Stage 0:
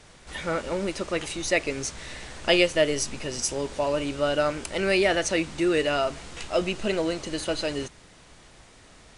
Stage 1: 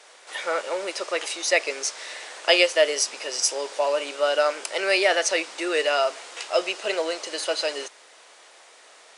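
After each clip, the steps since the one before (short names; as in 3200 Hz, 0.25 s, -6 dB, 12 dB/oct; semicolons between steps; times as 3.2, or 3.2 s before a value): HPF 460 Hz 24 dB/oct; dynamic EQ 5100 Hz, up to +5 dB, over -49 dBFS, Q 4.3; gain +3.5 dB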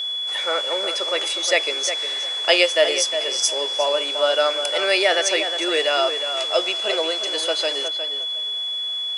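tape echo 0.358 s, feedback 23%, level -8 dB, low-pass 2700 Hz; whine 3400 Hz -25 dBFS; gain +1.5 dB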